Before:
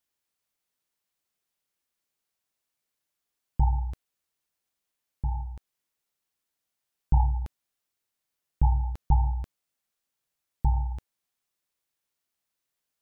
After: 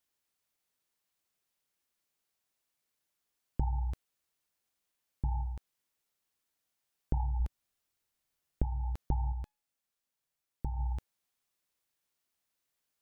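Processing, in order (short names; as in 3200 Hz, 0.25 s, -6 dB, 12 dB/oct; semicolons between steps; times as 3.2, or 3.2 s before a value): 7.4–8.64 low shelf 93 Hz +9.5 dB; compressor 12:1, threshold -27 dBFS, peak gain reduction 16.5 dB; 9.32–10.79 resonator 840 Hz, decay 0.39 s, mix 40%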